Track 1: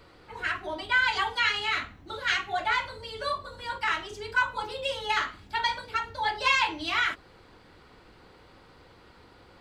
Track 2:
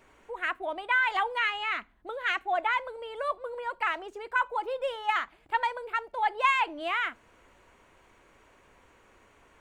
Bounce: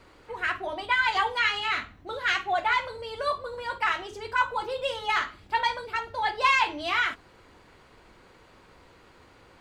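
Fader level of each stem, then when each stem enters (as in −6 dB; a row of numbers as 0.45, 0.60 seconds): −2.5, +0.5 decibels; 0.00, 0.00 seconds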